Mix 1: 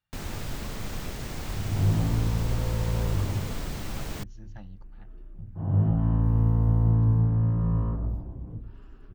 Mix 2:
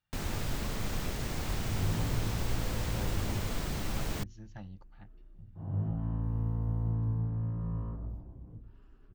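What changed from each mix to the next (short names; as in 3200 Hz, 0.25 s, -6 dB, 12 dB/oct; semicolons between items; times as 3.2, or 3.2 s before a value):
second sound -10.0 dB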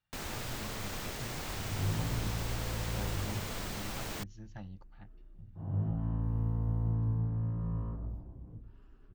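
first sound: add low shelf 270 Hz -10 dB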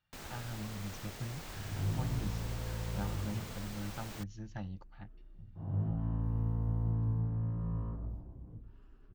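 speech +4.0 dB; first sound -7.0 dB; reverb: off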